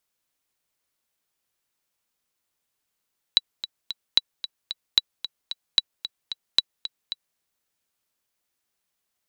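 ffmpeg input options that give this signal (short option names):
-f lavfi -i "aevalsrc='pow(10,(-3-13.5*gte(mod(t,3*60/224),60/224))/20)*sin(2*PI*3930*mod(t,60/224))*exp(-6.91*mod(t,60/224)/0.03)':d=4.01:s=44100"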